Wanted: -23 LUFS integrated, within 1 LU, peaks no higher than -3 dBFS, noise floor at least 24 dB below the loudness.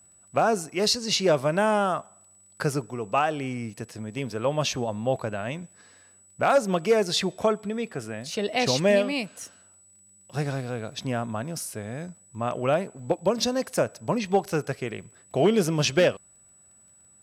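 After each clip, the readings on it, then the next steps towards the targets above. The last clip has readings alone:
ticks 20/s; steady tone 7900 Hz; tone level -54 dBFS; loudness -26.0 LUFS; peak -12.0 dBFS; loudness target -23.0 LUFS
-> de-click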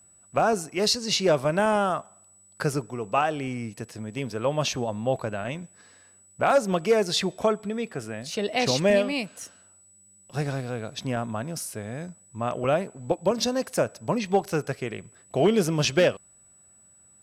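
ticks 0.64/s; steady tone 7900 Hz; tone level -54 dBFS
-> notch 7900 Hz, Q 30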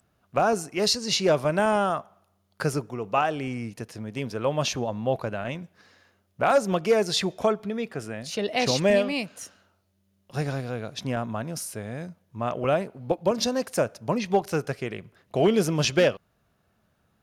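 steady tone none; loudness -26.0 LUFS; peak -9.5 dBFS; loudness target -23.0 LUFS
-> gain +3 dB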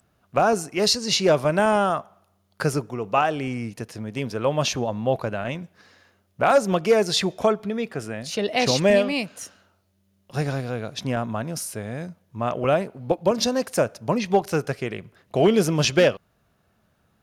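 loudness -23.0 LUFS; peak -6.5 dBFS; noise floor -67 dBFS

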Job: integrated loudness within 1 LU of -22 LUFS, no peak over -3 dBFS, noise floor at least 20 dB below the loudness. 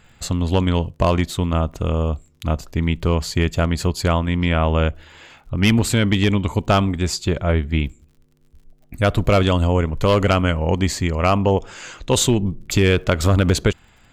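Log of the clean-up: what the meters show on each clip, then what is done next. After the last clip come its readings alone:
ticks 50/s; loudness -19.5 LUFS; peak -4.0 dBFS; loudness target -22.0 LUFS
-> de-click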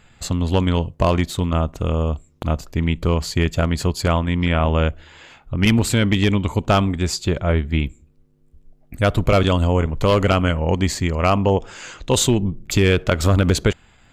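ticks 0.50/s; loudness -19.5 LUFS; peak -3.0 dBFS; loudness target -22.0 LUFS
-> gain -2.5 dB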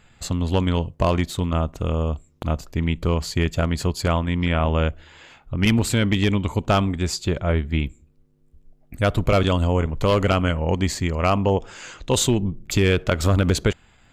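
loudness -22.0 LUFS; peak -5.5 dBFS; noise floor -56 dBFS

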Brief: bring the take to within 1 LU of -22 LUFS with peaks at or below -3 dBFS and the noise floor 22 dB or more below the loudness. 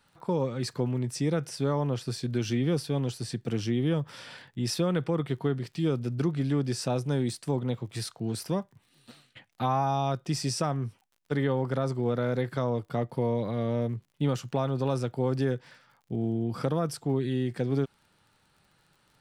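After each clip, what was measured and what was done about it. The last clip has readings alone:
ticks 44/s; loudness -30.0 LUFS; peak -14.5 dBFS; loudness target -22.0 LUFS
-> de-click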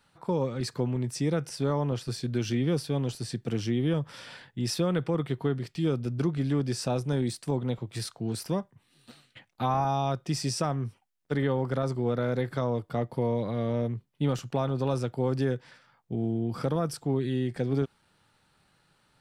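ticks 0.21/s; loudness -30.0 LUFS; peak -14.5 dBFS; loudness target -22.0 LUFS
-> gain +8 dB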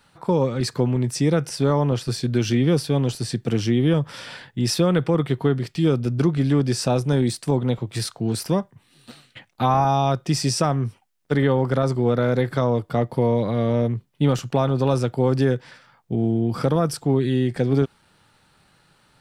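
loudness -22.0 LUFS; peak -6.5 dBFS; noise floor -61 dBFS

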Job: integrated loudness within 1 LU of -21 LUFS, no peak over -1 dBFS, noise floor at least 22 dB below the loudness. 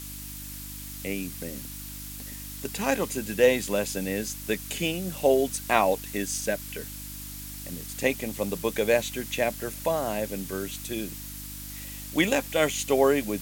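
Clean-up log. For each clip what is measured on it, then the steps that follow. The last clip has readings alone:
hum 50 Hz; harmonics up to 300 Hz; hum level -41 dBFS; noise floor -39 dBFS; noise floor target -50 dBFS; loudness -28.0 LUFS; peak -4.5 dBFS; loudness target -21.0 LUFS
-> de-hum 50 Hz, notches 6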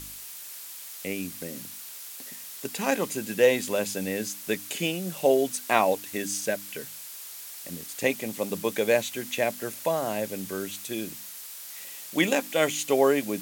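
hum none; noise floor -42 dBFS; noise floor target -51 dBFS
-> denoiser 9 dB, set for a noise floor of -42 dBFS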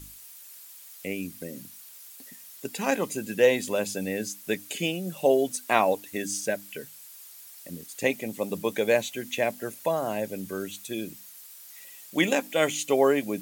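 noise floor -48 dBFS; noise floor target -50 dBFS
-> denoiser 6 dB, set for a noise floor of -48 dBFS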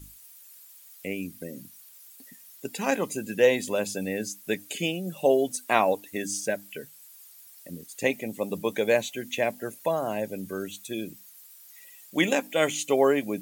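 noise floor -51 dBFS; loudness -27.5 LUFS; peak -4.5 dBFS; loudness target -21.0 LUFS
-> gain +6.5 dB; limiter -1 dBFS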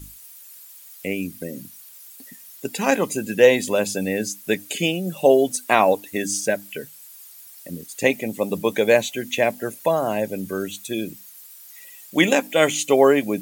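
loudness -21.0 LUFS; peak -1.0 dBFS; noise floor -45 dBFS

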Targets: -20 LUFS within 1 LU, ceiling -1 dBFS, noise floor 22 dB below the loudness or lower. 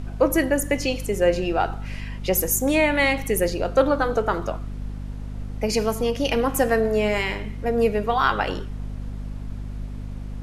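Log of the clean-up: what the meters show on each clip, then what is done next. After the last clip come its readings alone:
hum 50 Hz; harmonics up to 250 Hz; hum level -29 dBFS; noise floor -33 dBFS; noise floor target -45 dBFS; loudness -22.5 LUFS; peak -6.0 dBFS; loudness target -20.0 LUFS
-> notches 50/100/150/200/250 Hz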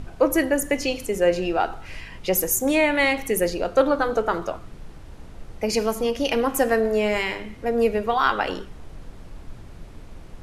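hum none; noise floor -42 dBFS; noise floor target -45 dBFS
-> noise print and reduce 6 dB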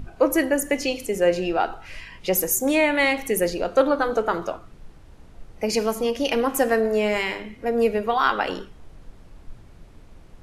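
noise floor -47 dBFS; loudness -22.5 LUFS; peak -6.0 dBFS; loudness target -20.0 LUFS
-> gain +2.5 dB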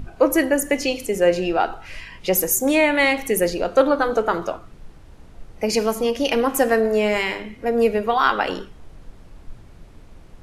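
loudness -20.0 LUFS; peak -3.5 dBFS; noise floor -45 dBFS

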